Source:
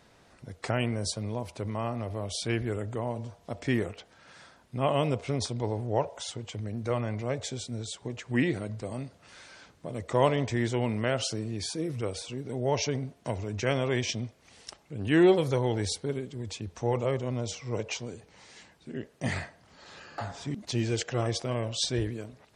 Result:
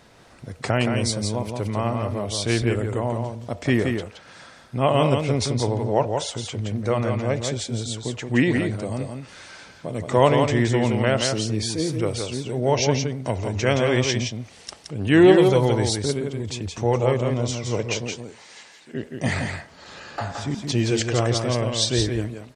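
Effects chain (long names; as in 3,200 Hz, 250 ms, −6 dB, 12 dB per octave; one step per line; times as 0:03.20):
0:18.12–0:18.93: high-pass filter 310 Hz → 1,100 Hz 6 dB per octave
single-tap delay 171 ms −5 dB
level +7 dB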